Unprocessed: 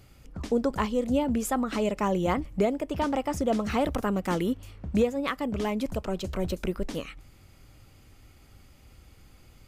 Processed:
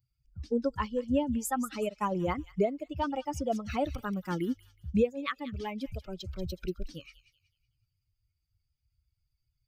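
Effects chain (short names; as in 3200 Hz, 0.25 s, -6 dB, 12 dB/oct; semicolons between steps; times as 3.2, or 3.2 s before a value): per-bin expansion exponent 2; thin delay 0.186 s, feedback 32%, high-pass 3000 Hz, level -9.5 dB; 1.82–2.24 transient shaper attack +3 dB, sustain -7 dB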